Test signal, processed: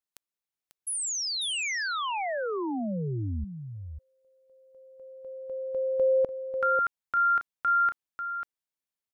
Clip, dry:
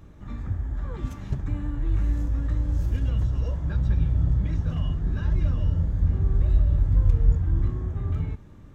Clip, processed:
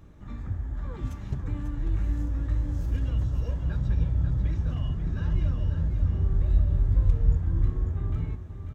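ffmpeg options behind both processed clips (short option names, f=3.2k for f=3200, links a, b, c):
-af "aecho=1:1:543:0.398,volume=-3dB"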